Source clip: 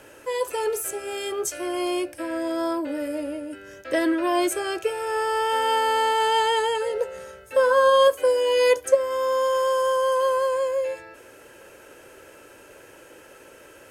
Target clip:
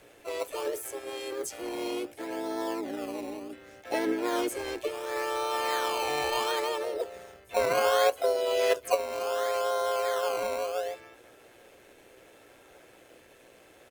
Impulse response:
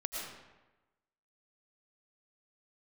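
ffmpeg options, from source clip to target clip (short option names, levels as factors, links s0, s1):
-filter_complex "[0:a]highshelf=f=5500:g=-4,asplit=4[s0][s1][s2][s3];[s1]asetrate=35002,aresample=44100,atempo=1.25992,volume=0.282[s4];[s2]asetrate=52444,aresample=44100,atempo=0.840896,volume=0.126[s5];[s3]asetrate=58866,aresample=44100,atempo=0.749154,volume=0.631[s6];[s0][s4][s5][s6]amix=inputs=4:normalize=0,tremolo=f=120:d=0.333,acrossover=split=640|1300[s7][s8][s9];[s8]acrusher=samples=18:mix=1:aa=0.000001:lfo=1:lforange=18:lforate=0.69[s10];[s7][s10][s9]amix=inputs=3:normalize=0,volume=0.473"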